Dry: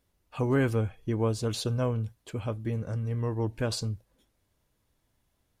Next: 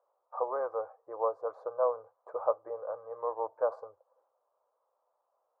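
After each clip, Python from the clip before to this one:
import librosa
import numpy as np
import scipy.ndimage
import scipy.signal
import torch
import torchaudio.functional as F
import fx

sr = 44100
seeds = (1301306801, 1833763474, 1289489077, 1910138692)

y = fx.rider(x, sr, range_db=5, speed_s=0.5)
y = scipy.signal.sosfilt(scipy.signal.ellip(3, 1.0, 50, [510.0, 1200.0], 'bandpass', fs=sr, output='sos'), y)
y = y * 10.0 ** (6.0 / 20.0)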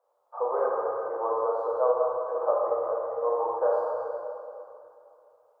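y = fx.rev_plate(x, sr, seeds[0], rt60_s=2.7, hf_ratio=0.85, predelay_ms=0, drr_db=-6.5)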